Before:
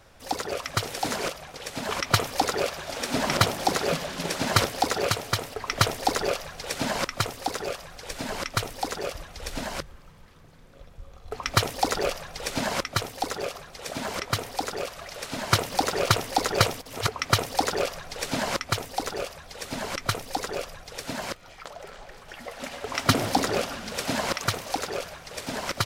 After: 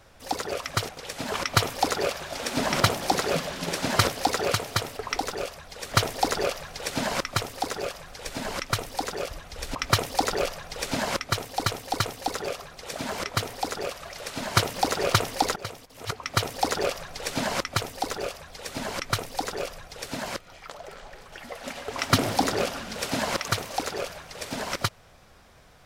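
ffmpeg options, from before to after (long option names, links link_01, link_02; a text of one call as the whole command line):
ffmpeg -i in.wav -filter_complex "[0:a]asplit=8[link_01][link_02][link_03][link_04][link_05][link_06][link_07][link_08];[link_01]atrim=end=0.892[link_09];[link_02]atrim=start=1.458:end=5.762[link_10];[link_03]atrim=start=18.978:end=19.712[link_11];[link_04]atrim=start=5.758:end=9.592[link_12];[link_05]atrim=start=11.388:end=13.302[link_13];[link_06]atrim=start=12.958:end=13.302[link_14];[link_07]atrim=start=12.958:end=16.52,asetpts=PTS-STARTPTS,afade=type=out:start_time=3.558:duration=0.004:curve=hsin:silence=0.112202[link_15];[link_08]atrim=start=16.52,asetpts=PTS-STARTPTS,afade=type=in:duration=1.19:silence=0.112202[link_16];[link_09][link_10]acrossfade=duration=0.004:curve1=hsin:curve2=hsin[link_17];[link_17][link_11]acrossfade=duration=0.004:curve1=hsin:curve2=hsin[link_18];[link_18][link_12]acrossfade=duration=0.004:curve1=hsin:curve2=hsin[link_19];[link_19][link_13]acrossfade=duration=0.004:curve1=hsin:curve2=hsin[link_20];[link_20][link_14]acrossfade=duration=0.004:curve1=hsin:curve2=hsin[link_21];[link_15][link_16]concat=n=2:v=0:a=1[link_22];[link_21][link_22]acrossfade=duration=0.004:curve1=hsin:curve2=hsin" out.wav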